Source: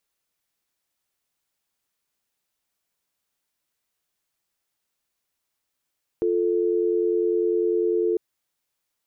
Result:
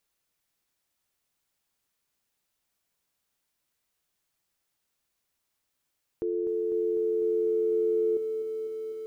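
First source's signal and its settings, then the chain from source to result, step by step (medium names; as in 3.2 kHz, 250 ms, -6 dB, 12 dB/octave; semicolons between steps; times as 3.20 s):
call progress tone dial tone, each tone -22 dBFS 1.95 s
peak limiter -24 dBFS; bass shelf 190 Hz +3.5 dB; bit-crushed delay 250 ms, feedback 80%, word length 10-bit, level -11 dB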